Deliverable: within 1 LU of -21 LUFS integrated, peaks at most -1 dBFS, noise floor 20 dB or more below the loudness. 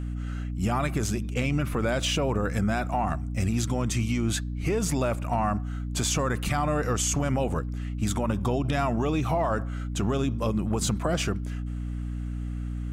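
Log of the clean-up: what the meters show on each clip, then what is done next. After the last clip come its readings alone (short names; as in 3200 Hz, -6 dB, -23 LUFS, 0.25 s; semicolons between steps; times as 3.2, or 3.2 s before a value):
hum 60 Hz; harmonics up to 300 Hz; hum level -29 dBFS; loudness -27.5 LUFS; peak -13.5 dBFS; loudness target -21.0 LUFS
-> de-hum 60 Hz, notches 5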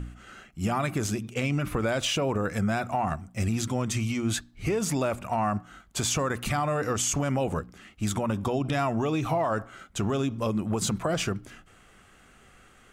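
hum none; loudness -28.5 LUFS; peak -15.5 dBFS; loudness target -21.0 LUFS
-> gain +7.5 dB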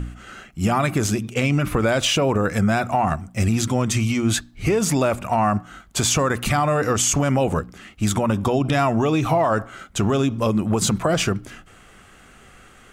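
loudness -21.0 LUFS; peak -8.0 dBFS; noise floor -49 dBFS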